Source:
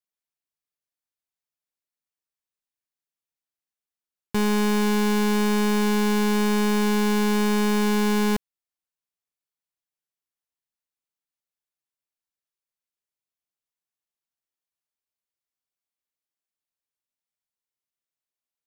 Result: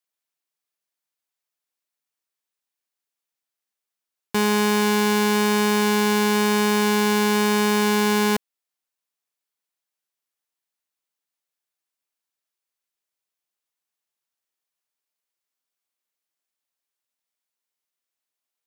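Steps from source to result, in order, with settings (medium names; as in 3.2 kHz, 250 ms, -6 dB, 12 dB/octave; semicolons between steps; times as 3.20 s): high-pass 340 Hz 6 dB/octave; trim +5.5 dB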